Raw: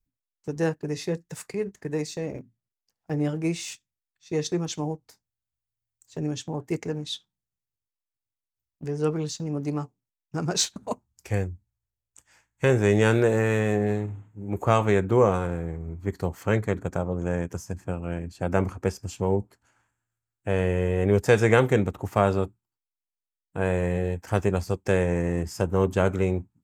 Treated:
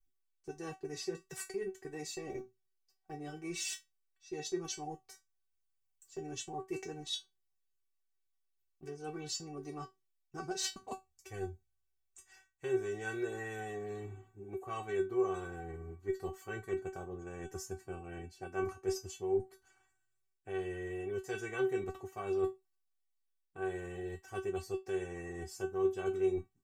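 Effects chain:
reversed playback
downward compressor 6 to 1, threshold −31 dBFS, peak gain reduction 17 dB
reversed playback
tuned comb filter 380 Hz, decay 0.18 s, harmonics all, mix 100%
level +11.5 dB

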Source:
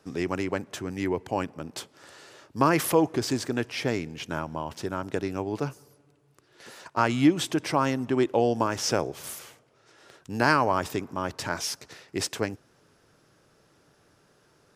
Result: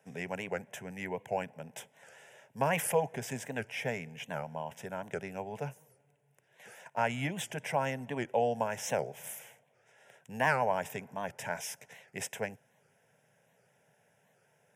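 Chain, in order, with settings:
high-pass filter 130 Hz 24 dB per octave
phaser with its sweep stopped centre 1,200 Hz, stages 6
wow of a warped record 78 rpm, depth 160 cents
level −2.5 dB

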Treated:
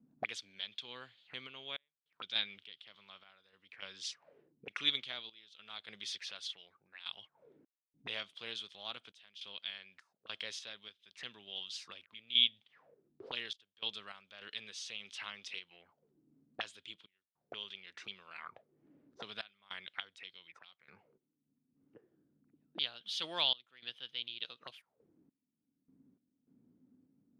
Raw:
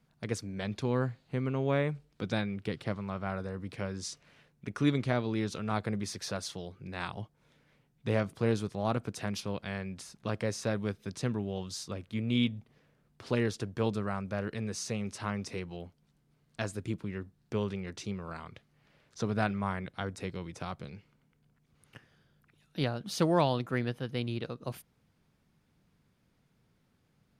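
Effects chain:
envelope filter 250–3,300 Hz, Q 7.3, up, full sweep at −35 dBFS
sample-and-hold tremolo 3.4 Hz, depth 100%
level +16 dB

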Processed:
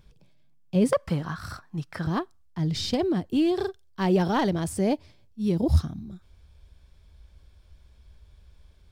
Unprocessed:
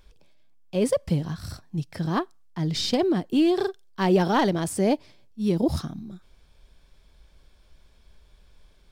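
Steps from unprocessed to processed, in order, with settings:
parametric band 140 Hz +15 dB 1.2 octaves, from 0:00.93 1,300 Hz, from 0:02.07 77 Hz
level −3.5 dB

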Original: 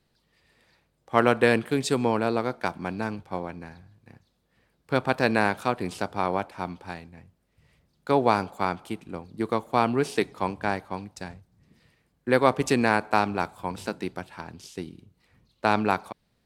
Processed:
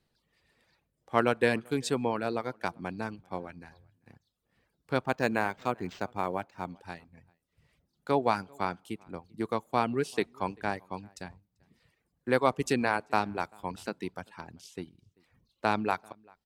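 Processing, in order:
reverb reduction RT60 0.68 s
slap from a distant wall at 67 metres, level −28 dB
0:05.05–0:06.70: linearly interpolated sample-rate reduction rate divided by 4×
level −4.5 dB

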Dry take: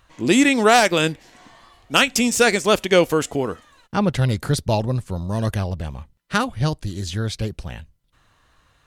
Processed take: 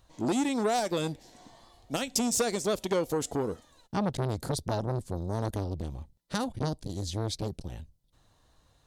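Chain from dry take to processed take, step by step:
downward compressor 6 to 1, threshold −18 dBFS, peak gain reduction 9 dB
flat-topped bell 1,800 Hz −9.5 dB
saturating transformer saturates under 980 Hz
level −3.5 dB

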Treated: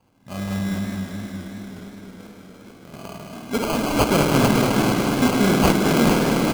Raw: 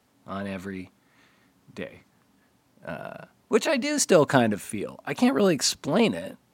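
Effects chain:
parametric band 480 Hz −11.5 dB 1.7 octaves
echo with shifted repeats 440 ms, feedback 55%, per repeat +71 Hz, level −5.5 dB
0:00.78–0:02.94: downward compressor 4 to 1, threshold −51 dBFS, peak gain reduction 15 dB
parametric band 1,400 Hz −7 dB 1.8 octaves
spring reverb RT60 3.6 s, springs 51 ms, chirp 65 ms, DRR −1.5 dB
decimation without filtering 24×
feedback echo with a swinging delay time 209 ms, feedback 75%, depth 166 cents, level −9 dB
level +7 dB

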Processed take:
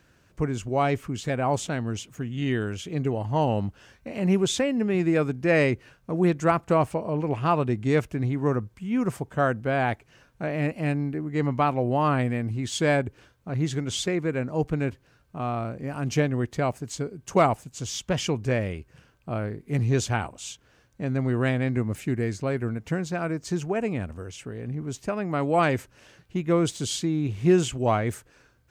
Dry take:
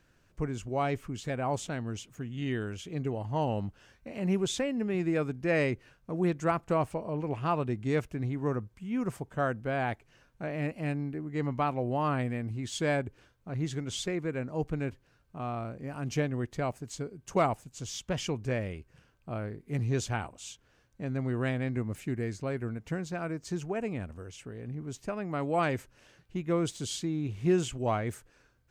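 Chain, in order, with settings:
high-pass filter 43 Hz
level +6.5 dB

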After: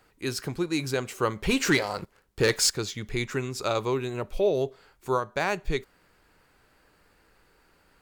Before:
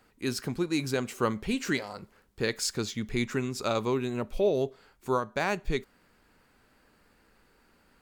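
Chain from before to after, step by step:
parametric band 230 Hz −10.5 dB 0.32 octaves
0:01.43–0:02.70: leveller curve on the samples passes 2
level +2 dB

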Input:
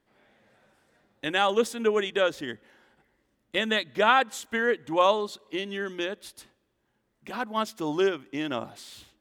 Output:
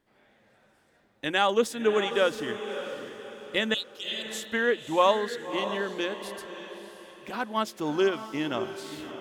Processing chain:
0:03.74–0:04.27: Chebyshev high-pass filter 2,800 Hz, order 6
on a send: feedback delay with all-pass diffusion 610 ms, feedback 41%, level −10 dB

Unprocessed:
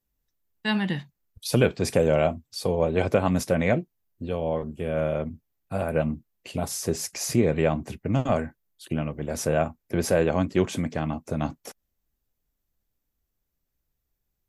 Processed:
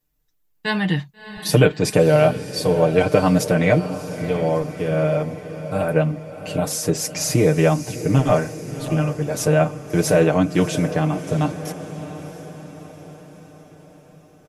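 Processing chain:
comb filter 6.6 ms, depth 84%
feedback delay with all-pass diffusion 662 ms, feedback 56%, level −12.5 dB
level +4 dB

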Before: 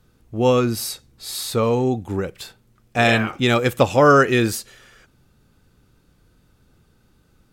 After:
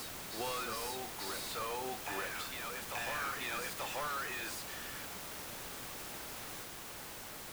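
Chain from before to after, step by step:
high-pass filter 1,500 Hz 12 dB per octave
brickwall limiter −18 dBFS, peak gain reduction 11 dB
soft clipping −34 dBFS, distortion −6 dB
downward compressor 4 to 1, threshold −46 dBFS, peak gain reduction 9 dB
bit-depth reduction 8 bits, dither triangular
high-shelf EQ 2,000 Hz −10.5 dB
on a send: backwards echo 888 ms −3 dB
on the sum: level +9 dB

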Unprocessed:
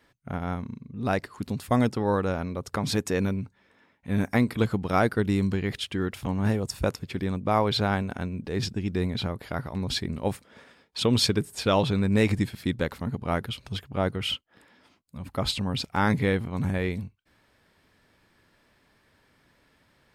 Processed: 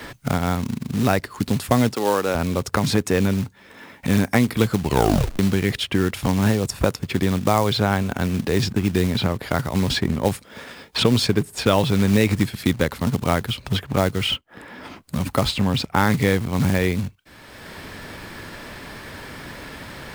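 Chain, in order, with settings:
0:04.78: tape stop 0.61 s
floating-point word with a short mantissa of 2 bits
0:01.93–0:02.35: high-pass filter 320 Hz 12 dB per octave
multiband upward and downward compressor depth 70%
level +6.5 dB

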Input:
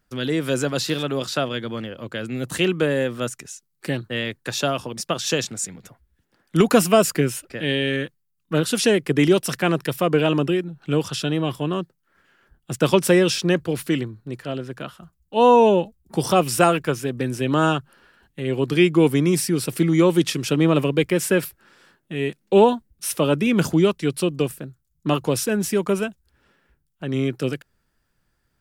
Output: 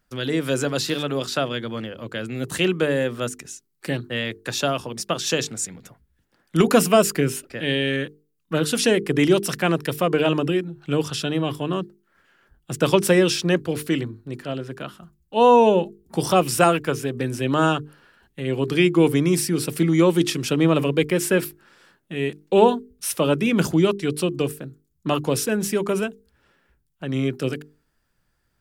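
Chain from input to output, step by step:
mains-hum notches 50/100/150/200/250/300/350/400/450 Hz

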